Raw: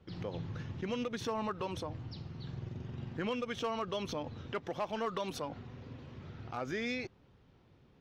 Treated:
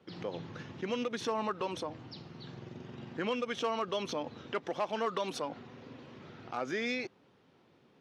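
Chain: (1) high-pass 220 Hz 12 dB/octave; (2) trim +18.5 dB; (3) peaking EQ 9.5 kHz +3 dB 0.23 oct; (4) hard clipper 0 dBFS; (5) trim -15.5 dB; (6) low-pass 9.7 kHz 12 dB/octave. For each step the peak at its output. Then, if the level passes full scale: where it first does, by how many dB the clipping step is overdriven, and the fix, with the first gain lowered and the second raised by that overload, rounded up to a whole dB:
-23.5 dBFS, -5.0 dBFS, -5.0 dBFS, -5.0 dBFS, -20.5 dBFS, -20.5 dBFS; nothing clips

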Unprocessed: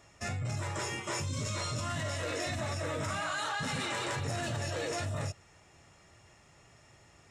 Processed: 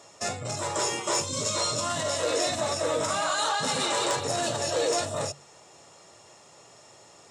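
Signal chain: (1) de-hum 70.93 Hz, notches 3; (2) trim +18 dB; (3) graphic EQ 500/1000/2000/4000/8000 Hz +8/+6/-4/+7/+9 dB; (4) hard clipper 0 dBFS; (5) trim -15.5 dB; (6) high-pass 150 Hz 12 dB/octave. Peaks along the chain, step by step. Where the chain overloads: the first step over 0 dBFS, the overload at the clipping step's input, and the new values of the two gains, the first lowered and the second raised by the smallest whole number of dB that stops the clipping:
-21.5 dBFS, -3.5 dBFS, +3.0 dBFS, 0.0 dBFS, -15.5 dBFS, -14.5 dBFS; step 3, 3.0 dB; step 2 +15 dB, step 5 -12.5 dB

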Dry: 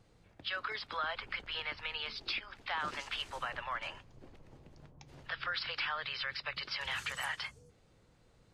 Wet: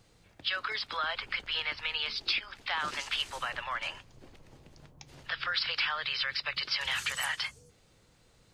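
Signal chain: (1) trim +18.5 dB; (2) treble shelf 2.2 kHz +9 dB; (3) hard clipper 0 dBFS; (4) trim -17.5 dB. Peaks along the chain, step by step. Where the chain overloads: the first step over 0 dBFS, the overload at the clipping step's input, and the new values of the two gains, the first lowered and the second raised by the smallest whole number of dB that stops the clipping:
-6.5 dBFS, -1.5 dBFS, -1.5 dBFS, -19.0 dBFS; nothing clips

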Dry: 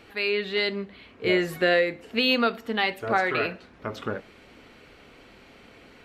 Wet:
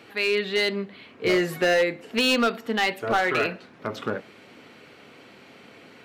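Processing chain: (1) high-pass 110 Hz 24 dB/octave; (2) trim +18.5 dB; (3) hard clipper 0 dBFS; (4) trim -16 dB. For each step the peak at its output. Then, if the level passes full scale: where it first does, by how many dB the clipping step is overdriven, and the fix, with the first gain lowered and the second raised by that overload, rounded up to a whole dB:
-9.5 dBFS, +9.0 dBFS, 0.0 dBFS, -16.0 dBFS; step 2, 9.0 dB; step 2 +9.5 dB, step 4 -7 dB

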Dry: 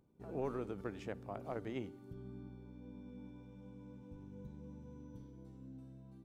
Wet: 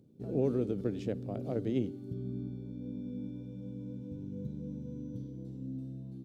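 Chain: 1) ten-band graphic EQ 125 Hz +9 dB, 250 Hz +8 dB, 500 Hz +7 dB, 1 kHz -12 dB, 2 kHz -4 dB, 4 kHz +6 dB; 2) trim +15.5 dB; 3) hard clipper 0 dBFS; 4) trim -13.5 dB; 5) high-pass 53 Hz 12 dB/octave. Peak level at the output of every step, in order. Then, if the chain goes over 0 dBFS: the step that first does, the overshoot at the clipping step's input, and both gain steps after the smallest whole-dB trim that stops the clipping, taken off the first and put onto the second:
-21.0 dBFS, -5.5 dBFS, -5.5 dBFS, -19.0 dBFS, -19.5 dBFS; nothing clips

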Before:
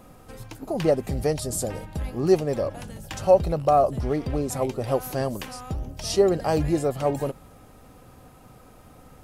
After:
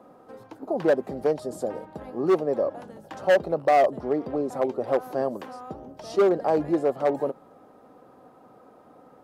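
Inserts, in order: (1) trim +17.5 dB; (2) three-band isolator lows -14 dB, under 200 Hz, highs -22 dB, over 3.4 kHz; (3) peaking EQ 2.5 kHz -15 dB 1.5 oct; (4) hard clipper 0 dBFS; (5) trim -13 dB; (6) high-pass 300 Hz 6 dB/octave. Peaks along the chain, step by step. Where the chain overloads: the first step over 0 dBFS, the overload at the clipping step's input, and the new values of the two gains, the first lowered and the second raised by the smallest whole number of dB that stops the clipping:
+11.0 dBFS, +11.0 dBFS, +9.5 dBFS, 0.0 dBFS, -13.0 dBFS, -10.0 dBFS; step 1, 9.5 dB; step 1 +7.5 dB, step 5 -3 dB

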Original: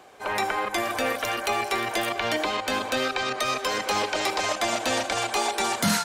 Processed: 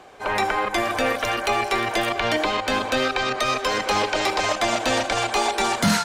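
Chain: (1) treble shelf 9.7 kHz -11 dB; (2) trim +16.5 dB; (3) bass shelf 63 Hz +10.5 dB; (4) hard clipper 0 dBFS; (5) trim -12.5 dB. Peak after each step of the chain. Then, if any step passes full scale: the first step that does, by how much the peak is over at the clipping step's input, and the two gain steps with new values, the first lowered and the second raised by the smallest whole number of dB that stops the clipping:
-13.0 dBFS, +3.5 dBFS, +4.5 dBFS, 0.0 dBFS, -12.5 dBFS; step 2, 4.5 dB; step 2 +11.5 dB, step 5 -7.5 dB

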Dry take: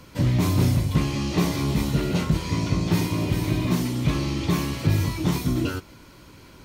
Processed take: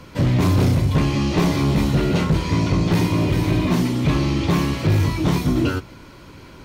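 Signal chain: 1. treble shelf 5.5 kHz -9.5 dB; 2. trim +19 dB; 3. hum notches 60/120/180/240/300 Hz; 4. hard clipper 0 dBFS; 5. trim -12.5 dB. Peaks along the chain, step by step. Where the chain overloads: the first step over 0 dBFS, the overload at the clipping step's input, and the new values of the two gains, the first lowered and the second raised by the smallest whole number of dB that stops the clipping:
-11.5 dBFS, +7.5 dBFS, +8.5 dBFS, 0.0 dBFS, -12.5 dBFS; step 2, 8.5 dB; step 2 +10 dB, step 5 -3.5 dB

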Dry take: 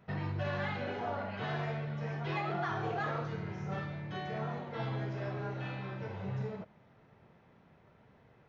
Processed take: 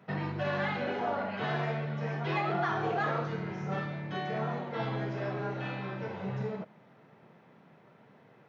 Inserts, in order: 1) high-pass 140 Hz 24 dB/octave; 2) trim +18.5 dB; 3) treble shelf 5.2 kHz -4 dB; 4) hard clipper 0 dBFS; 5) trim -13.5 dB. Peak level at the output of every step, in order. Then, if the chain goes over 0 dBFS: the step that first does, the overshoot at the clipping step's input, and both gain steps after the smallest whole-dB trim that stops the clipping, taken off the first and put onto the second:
-24.0 dBFS, -5.5 dBFS, -5.5 dBFS, -5.5 dBFS, -19.0 dBFS; nothing clips

